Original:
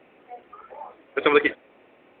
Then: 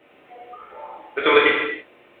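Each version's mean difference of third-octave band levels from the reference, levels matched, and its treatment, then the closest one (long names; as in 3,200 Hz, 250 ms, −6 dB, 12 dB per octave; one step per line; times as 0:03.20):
3.0 dB: high-shelf EQ 3,300 Hz +8.5 dB
reverb whose tail is shaped and stops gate 360 ms falling, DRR −5.5 dB
level −3.5 dB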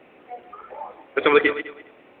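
1.5 dB: feedback delay that plays each chunk backwards 102 ms, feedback 41%, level −13 dB
in parallel at −2.5 dB: brickwall limiter −13.5 dBFS, peak gain reduction 10.5 dB
on the sum: level −1 dB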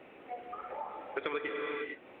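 9.0 dB: reverb whose tail is shaped and stops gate 480 ms flat, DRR 4 dB
downward compressor 4 to 1, threshold −37 dBFS, peak gain reduction 21 dB
level +1 dB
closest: second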